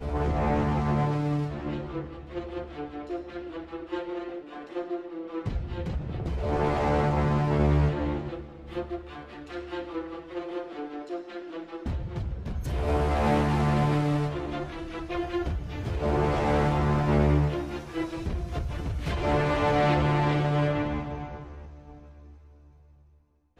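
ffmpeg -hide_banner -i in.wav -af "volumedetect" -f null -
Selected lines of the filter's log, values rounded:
mean_volume: -28.1 dB
max_volume: -11.5 dB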